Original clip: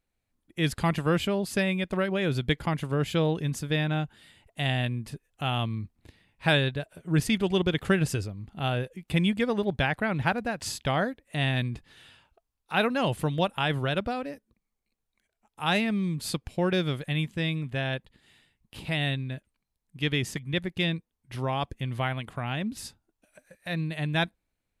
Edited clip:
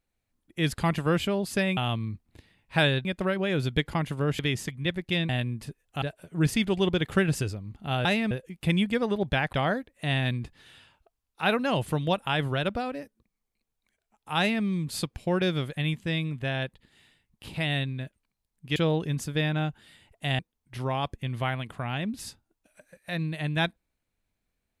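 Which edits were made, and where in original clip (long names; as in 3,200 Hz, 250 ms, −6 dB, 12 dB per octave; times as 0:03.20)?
0:03.11–0:04.74: swap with 0:20.07–0:20.97
0:05.47–0:06.75: move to 0:01.77
0:10.00–0:10.84: remove
0:15.69–0:15.95: duplicate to 0:08.78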